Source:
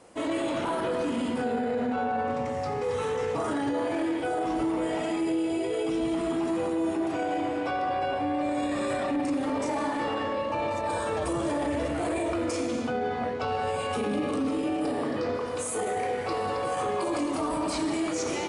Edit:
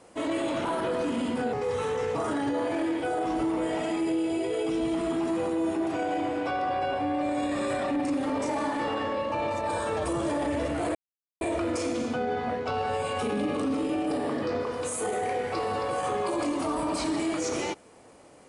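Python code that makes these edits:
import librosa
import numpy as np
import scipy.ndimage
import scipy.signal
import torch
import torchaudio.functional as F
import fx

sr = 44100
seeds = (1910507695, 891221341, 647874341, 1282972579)

y = fx.edit(x, sr, fx.cut(start_s=1.53, length_s=1.2),
    fx.insert_silence(at_s=12.15, length_s=0.46), tone=tone)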